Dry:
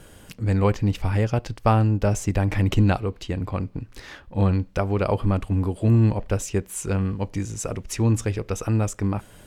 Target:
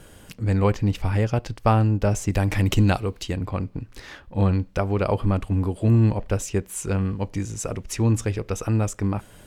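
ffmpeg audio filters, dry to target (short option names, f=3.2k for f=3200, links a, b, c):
-filter_complex "[0:a]asettb=1/sr,asplit=3[a][b][c];[a]atrim=end=2.324[d];[b]atrim=start=2.32:end=3.36,asetpts=PTS-STARTPTS,afade=t=in:d=0.004:c=qsin,afade=t=out:st=1.036:d=0.004:c=qsin,highshelf=f=4k:g=9.5[e];[c]atrim=start=3.356[f];[d][e]acrossfade=d=0.004:c1=hsin:c2=qsin[g];[g][f]acrossfade=d=0.004:c1=qsin:c2=hsin"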